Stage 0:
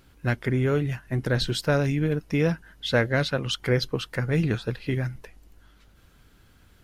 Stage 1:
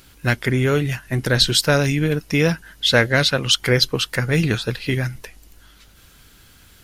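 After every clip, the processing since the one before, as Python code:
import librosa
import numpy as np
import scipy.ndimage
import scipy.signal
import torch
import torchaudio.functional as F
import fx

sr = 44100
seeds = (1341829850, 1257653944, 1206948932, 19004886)

y = fx.high_shelf(x, sr, hz=2200.0, db=11.5)
y = F.gain(torch.from_numpy(y), 4.5).numpy()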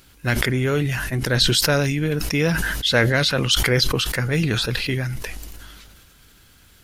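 y = fx.sustainer(x, sr, db_per_s=26.0)
y = F.gain(torch.from_numpy(y), -3.0).numpy()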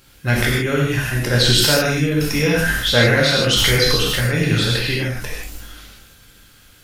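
y = fx.rev_gated(x, sr, seeds[0], gate_ms=180, shape='flat', drr_db=-4.0)
y = F.gain(torch.from_numpy(y), -1.5).numpy()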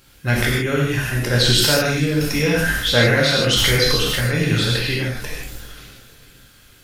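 y = fx.echo_feedback(x, sr, ms=447, feedback_pct=50, wet_db=-21.5)
y = F.gain(torch.from_numpy(y), -1.0).numpy()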